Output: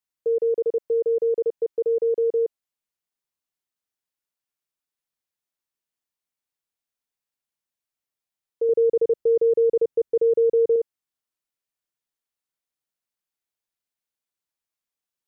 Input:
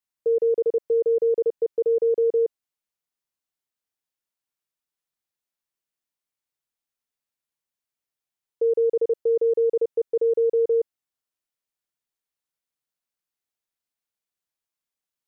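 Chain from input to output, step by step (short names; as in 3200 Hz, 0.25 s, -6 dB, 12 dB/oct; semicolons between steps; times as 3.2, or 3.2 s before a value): 8.69–10.76 low shelf 330 Hz +8.5 dB; gain -1 dB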